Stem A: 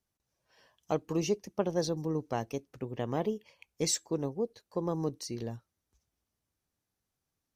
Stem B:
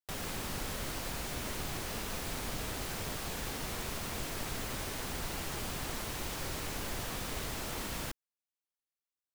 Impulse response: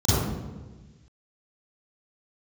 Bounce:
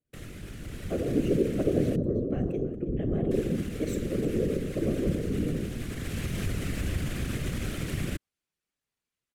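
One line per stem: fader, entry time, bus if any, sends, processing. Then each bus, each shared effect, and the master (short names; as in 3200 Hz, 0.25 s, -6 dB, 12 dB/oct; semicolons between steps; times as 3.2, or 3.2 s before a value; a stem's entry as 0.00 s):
-6.5 dB, 0.00 s, send -22 dB, echo send -16.5 dB, bell 400 Hz +12 dB 2.1 oct
-2.0 dB, 0.05 s, muted 1.96–3.31, no send, no echo send, low shelf 420 Hz +10 dB; limiter -27.5 dBFS, peak gain reduction 9 dB; AGC gain up to 8.5 dB; auto duck -7 dB, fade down 0.45 s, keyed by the first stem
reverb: on, RT60 1.3 s, pre-delay 36 ms
echo: feedback echo 0.324 s, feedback 30%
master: whisperiser; fixed phaser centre 2200 Hz, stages 4; decimation joined by straight lines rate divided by 2×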